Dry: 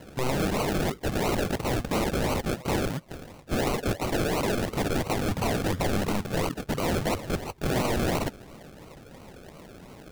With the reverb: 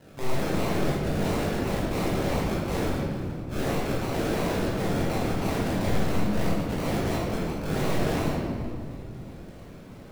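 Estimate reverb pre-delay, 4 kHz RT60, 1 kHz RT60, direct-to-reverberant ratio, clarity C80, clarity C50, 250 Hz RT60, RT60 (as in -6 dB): 20 ms, 1.3 s, 1.9 s, -7.5 dB, 0.5 dB, -2.0 dB, 3.9 s, 2.3 s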